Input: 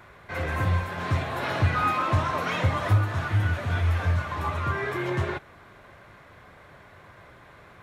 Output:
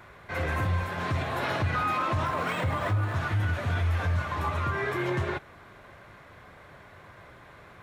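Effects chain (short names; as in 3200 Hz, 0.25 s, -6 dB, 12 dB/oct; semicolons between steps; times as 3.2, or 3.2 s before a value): limiter -19.5 dBFS, peak gain reduction 7 dB; 2.25–3.16 decimation joined by straight lines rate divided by 4×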